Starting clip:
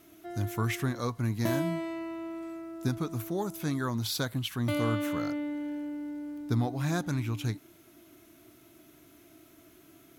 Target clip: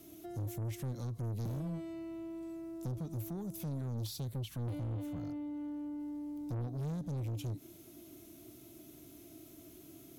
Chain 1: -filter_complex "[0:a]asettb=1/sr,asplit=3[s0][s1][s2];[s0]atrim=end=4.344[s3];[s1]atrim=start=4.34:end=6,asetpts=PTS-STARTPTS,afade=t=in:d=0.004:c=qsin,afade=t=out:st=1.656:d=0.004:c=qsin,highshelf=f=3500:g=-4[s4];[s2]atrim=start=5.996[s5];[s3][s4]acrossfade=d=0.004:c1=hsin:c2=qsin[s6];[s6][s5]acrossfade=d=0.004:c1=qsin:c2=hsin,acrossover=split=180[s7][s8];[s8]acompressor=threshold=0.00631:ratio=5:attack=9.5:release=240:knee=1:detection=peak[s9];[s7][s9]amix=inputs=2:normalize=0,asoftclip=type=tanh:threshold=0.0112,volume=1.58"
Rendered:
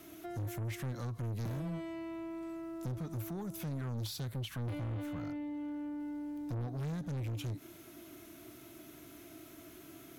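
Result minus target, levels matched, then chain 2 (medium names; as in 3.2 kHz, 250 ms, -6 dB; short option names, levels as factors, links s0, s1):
2 kHz band +9.0 dB
-filter_complex "[0:a]asettb=1/sr,asplit=3[s0][s1][s2];[s0]atrim=end=4.344[s3];[s1]atrim=start=4.34:end=6,asetpts=PTS-STARTPTS,afade=t=in:d=0.004:c=qsin,afade=t=out:st=1.656:d=0.004:c=qsin,highshelf=f=3500:g=-4[s4];[s2]atrim=start=5.996[s5];[s3][s4]acrossfade=d=0.004:c1=hsin:c2=qsin[s6];[s6][s5]acrossfade=d=0.004:c1=qsin:c2=hsin,acrossover=split=180[s7][s8];[s8]acompressor=threshold=0.00631:ratio=5:attack=9.5:release=240:knee=1:detection=peak,equalizer=f=1500:w=0.72:g=-13[s9];[s7][s9]amix=inputs=2:normalize=0,asoftclip=type=tanh:threshold=0.0112,volume=1.58"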